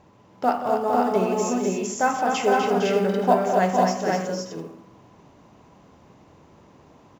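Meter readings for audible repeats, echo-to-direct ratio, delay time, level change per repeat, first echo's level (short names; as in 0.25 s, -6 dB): 5, 0.5 dB, 0.179 s, no steady repeat, -11.5 dB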